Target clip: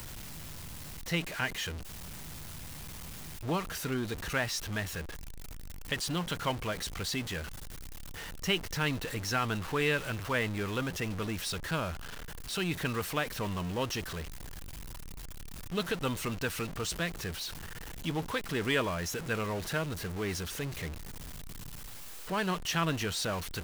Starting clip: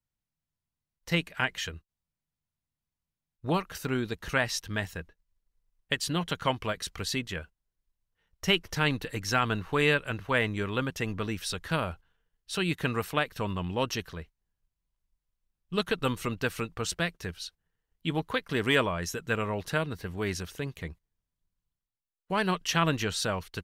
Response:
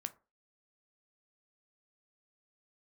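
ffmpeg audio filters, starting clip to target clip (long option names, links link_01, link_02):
-af "aeval=exprs='val(0)+0.5*0.0335*sgn(val(0))':channel_layout=same,acompressor=mode=upward:threshold=-42dB:ratio=2.5,volume=-6dB"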